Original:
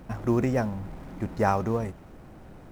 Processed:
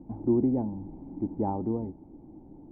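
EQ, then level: cascade formant filter u; +7.5 dB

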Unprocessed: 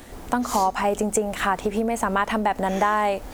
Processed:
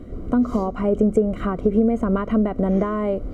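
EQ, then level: boxcar filter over 51 samples; +9.0 dB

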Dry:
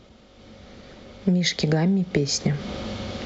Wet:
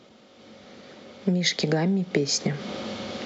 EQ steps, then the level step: high-pass 190 Hz 12 dB/octave; 0.0 dB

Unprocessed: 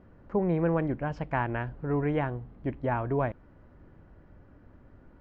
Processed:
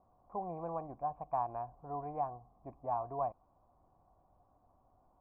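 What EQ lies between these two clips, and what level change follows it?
cascade formant filter a; bass shelf 220 Hz +6 dB; +4.0 dB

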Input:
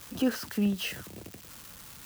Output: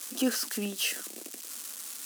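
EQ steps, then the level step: brick-wall FIR high-pass 210 Hz; peaking EQ 8.9 kHz +13 dB 2 oct; band-stop 920 Hz, Q 14; -1.0 dB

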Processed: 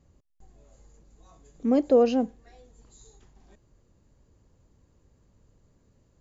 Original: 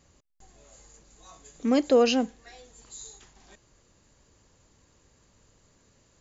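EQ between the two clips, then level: dynamic bell 660 Hz, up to +5 dB, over -35 dBFS, Q 0.97; tilt shelf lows +6.5 dB; bass shelf 150 Hz +4.5 dB; -7.0 dB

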